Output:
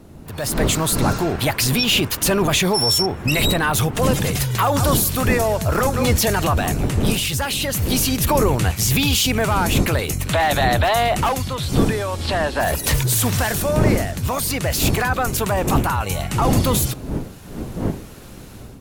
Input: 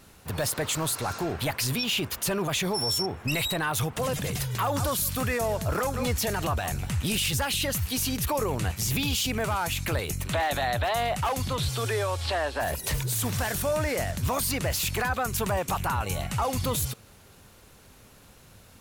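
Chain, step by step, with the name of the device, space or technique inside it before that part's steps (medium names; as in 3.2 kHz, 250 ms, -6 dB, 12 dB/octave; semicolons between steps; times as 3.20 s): smartphone video outdoors (wind noise 260 Hz -32 dBFS; level rider gain up to 14 dB; trim -3 dB; AAC 96 kbps 44.1 kHz)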